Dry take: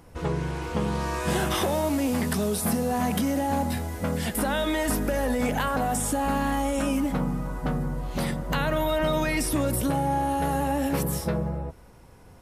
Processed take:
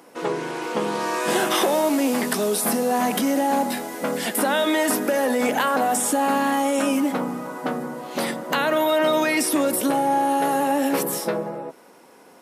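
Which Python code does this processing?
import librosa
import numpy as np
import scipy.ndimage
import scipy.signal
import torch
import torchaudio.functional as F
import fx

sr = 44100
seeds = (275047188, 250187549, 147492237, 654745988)

y = scipy.signal.sosfilt(scipy.signal.butter(4, 250.0, 'highpass', fs=sr, output='sos'), x)
y = y * 10.0 ** (6.0 / 20.0)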